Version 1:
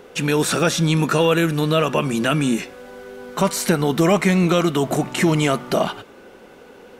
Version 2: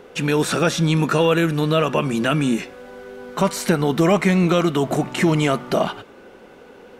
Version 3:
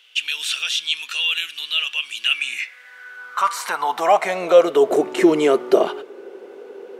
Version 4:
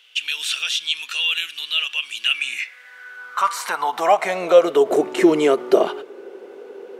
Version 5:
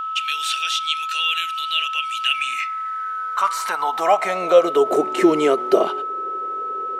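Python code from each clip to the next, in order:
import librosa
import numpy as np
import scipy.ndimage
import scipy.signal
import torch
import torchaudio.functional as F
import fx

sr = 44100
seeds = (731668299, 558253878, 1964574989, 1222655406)

y1 = fx.high_shelf(x, sr, hz=5400.0, db=-6.0)
y2 = fx.filter_sweep_highpass(y1, sr, from_hz=3000.0, to_hz=390.0, start_s=2.19, end_s=5.03, q=5.3)
y2 = F.gain(torch.from_numpy(y2), -2.5).numpy()
y3 = fx.end_taper(y2, sr, db_per_s=420.0)
y4 = y3 + 10.0 ** (-23.0 / 20.0) * np.sin(2.0 * np.pi * 1300.0 * np.arange(len(y3)) / sr)
y4 = F.gain(torch.from_numpy(y4), -1.0).numpy()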